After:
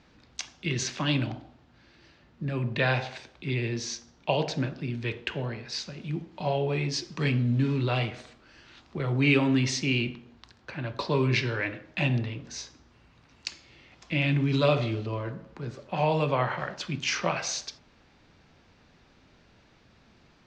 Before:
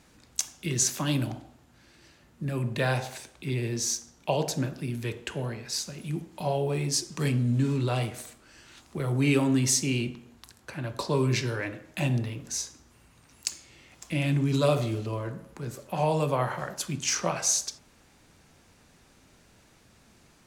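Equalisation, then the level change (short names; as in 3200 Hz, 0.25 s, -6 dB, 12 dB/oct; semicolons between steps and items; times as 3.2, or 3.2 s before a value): LPF 4900 Hz 24 dB/oct; dynamic EQ 2400 Hz, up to +6 dB, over -46 dBFS, Q 1.1; 0.0 dB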